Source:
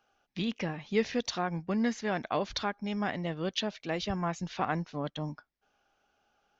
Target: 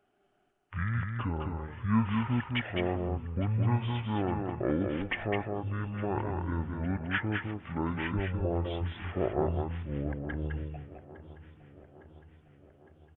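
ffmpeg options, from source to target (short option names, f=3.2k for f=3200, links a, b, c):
-filter_complex "[0:a]asplit=2[a][b];[b]aecho=0:1:430|860|1290|1720|2150:0.126|0.0743|0.0438|0.0259|0.0153[c];[a][c]amix=inputs=2:normalize=0,asetrate=22094,aresample=44100,asplit=2[d][e];[e]aecho=0:1:209:0.596[f];[d][f]amix=inputs=2:normalize=0"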